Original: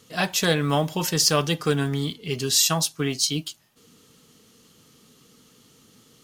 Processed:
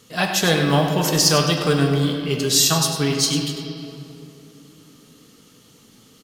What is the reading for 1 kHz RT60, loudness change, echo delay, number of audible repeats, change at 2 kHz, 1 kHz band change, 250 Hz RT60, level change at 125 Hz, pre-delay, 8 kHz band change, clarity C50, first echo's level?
2.6 s, +4.0 dB, 99 ms, 1, +4.5 dB, +4.5 dB, 3.8 s, +5.5 dB, 5 ms, +3.5 dB, 3.5 dB, -10.5 dB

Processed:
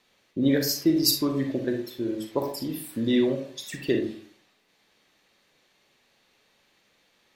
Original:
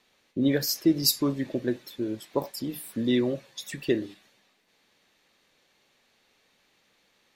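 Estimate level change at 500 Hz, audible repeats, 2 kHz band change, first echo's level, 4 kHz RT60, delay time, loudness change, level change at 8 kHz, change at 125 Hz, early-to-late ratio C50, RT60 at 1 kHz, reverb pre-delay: +2.0 dB, none, +1.5 dB, none, 0.25 s, none, +1.5 dB, +1.0 dB, +1.0 dB, 6.5 dB, 0.45 s, 36 ms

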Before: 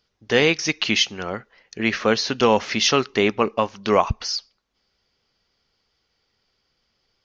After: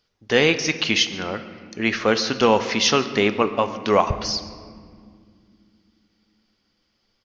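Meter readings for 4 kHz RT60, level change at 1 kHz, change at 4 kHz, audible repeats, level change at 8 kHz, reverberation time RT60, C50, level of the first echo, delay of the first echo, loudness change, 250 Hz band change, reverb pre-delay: 1.3 s, +0.5 dB, 0.0 dB, 1, n/a, 2.3 s, 11.5 dB, -22.0 dB, 0.142 s, +0.5 dB, +0.5 dB, 3 ms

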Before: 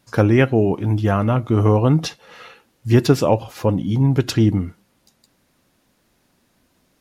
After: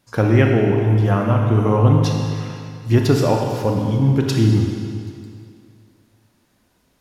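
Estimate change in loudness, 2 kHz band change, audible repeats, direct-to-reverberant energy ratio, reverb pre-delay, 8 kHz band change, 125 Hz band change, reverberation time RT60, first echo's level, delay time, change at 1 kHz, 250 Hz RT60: +0.5 dB, 0.0 dB, none, 0.5 dB, 28 ms, -0.5 dB, +2.5 dB, 2.3 s, none, none, +1.0 dB, 2.3 s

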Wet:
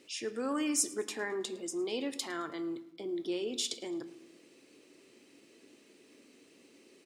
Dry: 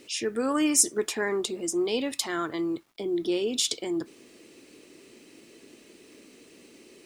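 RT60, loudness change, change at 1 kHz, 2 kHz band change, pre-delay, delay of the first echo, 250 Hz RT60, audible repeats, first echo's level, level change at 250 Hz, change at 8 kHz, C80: 0.80 s, -8.0 dB, -7.5 dB, -7.5 dB, 4 ms, 0.108 s, 1.3 s, 2, -21.0 dB, -8.0 dB, -9.0 dB, 16.0 dB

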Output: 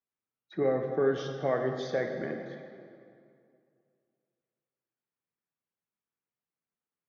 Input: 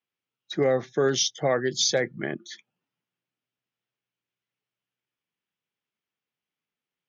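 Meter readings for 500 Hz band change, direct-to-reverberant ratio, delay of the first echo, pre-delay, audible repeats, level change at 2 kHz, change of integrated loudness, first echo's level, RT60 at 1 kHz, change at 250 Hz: -3.5 dB, 3.0 dB, none, 5 ms, none, -7.5 dB, -6.0 dB, none, 2.4 s, -3.5 dB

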